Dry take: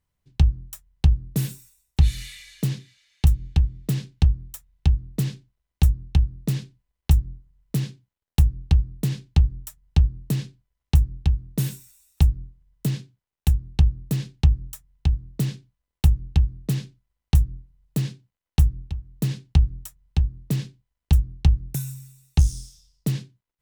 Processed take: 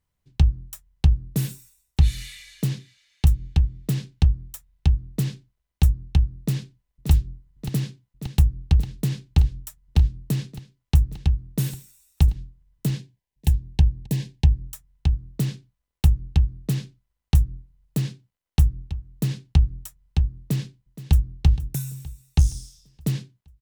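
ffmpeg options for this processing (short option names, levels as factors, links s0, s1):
-filter_complex "[0:a]asplit=2[s0][s1];[s1]afade=t=in:st=6.4:d=0.01,afade=t=out:st=7.1:d=0.01,aecho=0:1:580|1160|1740|2320|2900|3480|4060|4640|5220|5800|6380|6960:0.398107|0.338391|0.287632|0.244488|0.207814|0.176642|0.150146|0.127624|0.10848|0.0922084|0.0783771|0.0666205[s2];[s0][s2]amix=inputs=2:normalize=0,asettb=1/sr,asplit=3[s3][s4][s5];[s3]atrim=end=12.994[s6];[s4]atrim=start=12.99:end=14.64,asetpts=PTS-STARTPTS,afade=t=in:d=0.004:c=qsin,afade=t=out:st=1.646:d=0.004:c=qsin,asuperstop=centerf=1300:order=12:qfactor=2.9[s7];[s5]atrim=start=14.636[s8];[s6][s7]acrossfade=d=0.004:c1=hsin:c2=qsin[s9];[s9][s8]acrossfade=d=0.004:c1=qsin:c2=hsin,asplit=2[s10][s11];[s11]afade=t=in:st=20.39:d=0.01,afade=t=out:st=21.27:d=0.01,aecho=0:1:470|940|1410|1880|2350:0.177828|0.0978054|0.053793|0.0295861|0.0162724[s12];[s10][s12]amix=inputs=2:normalize=0"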